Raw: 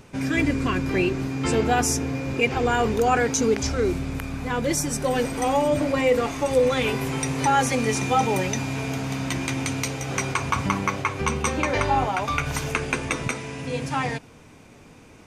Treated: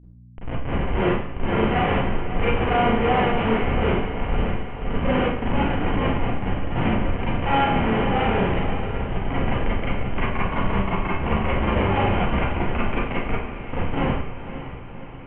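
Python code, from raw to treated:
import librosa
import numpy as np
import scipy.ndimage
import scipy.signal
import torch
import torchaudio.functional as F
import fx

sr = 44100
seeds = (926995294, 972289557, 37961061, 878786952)

p1 = fx.fade_in_head(x, sr, length_s=0.97)
p2 = fx.over_compress(p1, sr, threshold_db=-29.0, ratio=-0.5, at=(4.24, 5.01), fade=0.02)
p3 = fx.spec_box(p2, sr, start_s=5.41, length_s=2.37, low_hz=340.0, high_hz=790.0, gain_db=-28)
p4 = fx.schmitt(p3, sr, flips_db=-20.0)
p5 = scipy.signal.sosfilt(scipy.signal.cheby1(6, 3, 3100.0, 'lowpass', fs=sr, output='sos'), p4)
p6 = fx.add_hum(p5, sr, base_hz=60, snr_db=19)
p7 = p6 + fx.echo_diffused(p6, sr, ms=539, feedback_pct=58, wet_db=-11.0, dry=0)
y = fx.rev_schroeder(p7, sr, rt60_s=0.58, comb_ms=32, drr_db=-8.0)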